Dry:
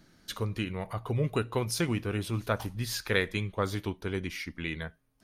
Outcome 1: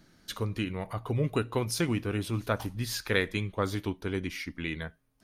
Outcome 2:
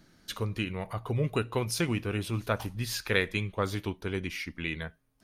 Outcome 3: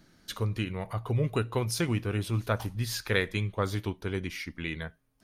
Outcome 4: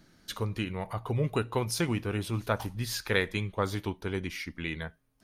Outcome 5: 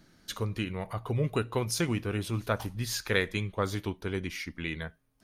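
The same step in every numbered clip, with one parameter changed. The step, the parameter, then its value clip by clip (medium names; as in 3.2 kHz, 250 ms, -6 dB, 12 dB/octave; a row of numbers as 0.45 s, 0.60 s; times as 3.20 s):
dynamic bell, frequency: 280 Hz, 2.6 kHz, 110 Hz, 870 Hz, 6.6 kHz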